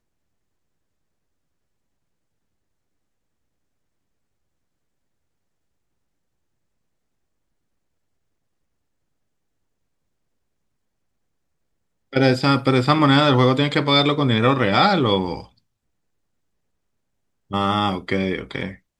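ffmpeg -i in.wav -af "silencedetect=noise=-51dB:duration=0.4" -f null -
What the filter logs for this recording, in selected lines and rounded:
silence_start: 0.00
silence_end: 12.12 | silence_duration: 12.12
silence_start: 15.58
silence_end: 17.50 | silence_duration: 1.92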